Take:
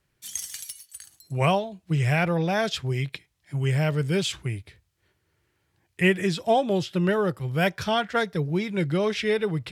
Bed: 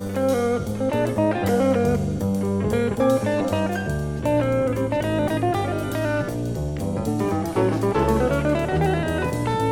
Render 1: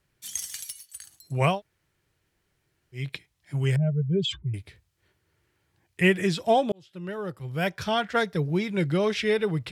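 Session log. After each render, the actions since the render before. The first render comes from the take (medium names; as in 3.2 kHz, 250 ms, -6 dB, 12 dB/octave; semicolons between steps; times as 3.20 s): 1.54–3.00 s: room tone, crossfade 0.16 s; 3.76–4.54 s: spectral contrast enhancement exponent 2.3; 6.72–8.16 s: fade in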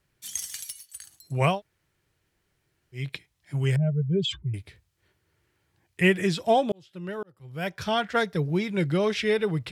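7.23–7.89 s: fade in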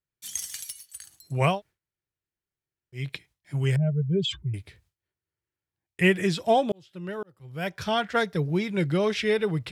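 gate with hold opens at -54 dBFS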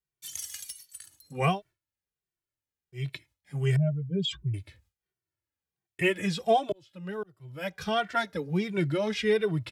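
endless flanger 2.1 ms -1.4 Hz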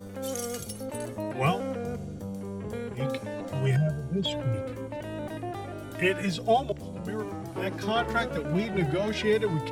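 add bed -13.5 dB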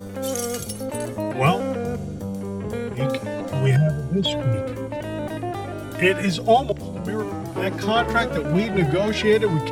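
trim +7 dB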